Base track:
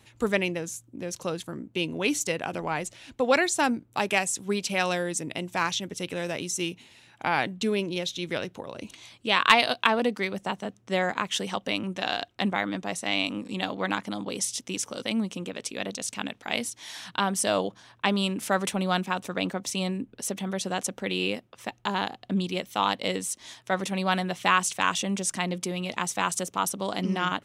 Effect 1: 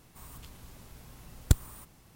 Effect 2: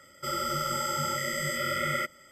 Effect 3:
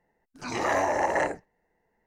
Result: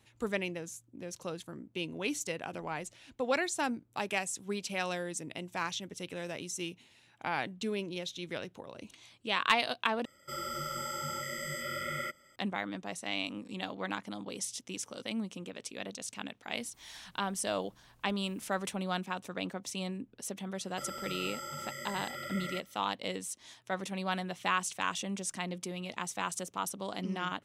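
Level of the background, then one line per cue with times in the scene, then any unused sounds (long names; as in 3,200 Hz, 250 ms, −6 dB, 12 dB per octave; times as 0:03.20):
base track −8.5 dB
0:10.05: overwrite with 2 −7.5 dB
0:16.59: mix in 1 −12 dB + downward compressor 3 to 1, threshold −53 dBFS
0:20.54: mix in 2 −11.5 dB
not used: 3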